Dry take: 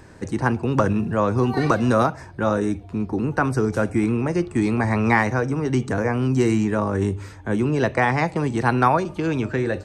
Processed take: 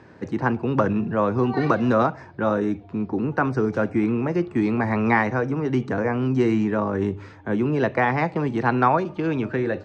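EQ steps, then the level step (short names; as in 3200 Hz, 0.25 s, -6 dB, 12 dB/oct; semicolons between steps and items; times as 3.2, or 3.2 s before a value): HPF 130 Hz 12 dB/oct; air absorption 190 m; 0.0 dB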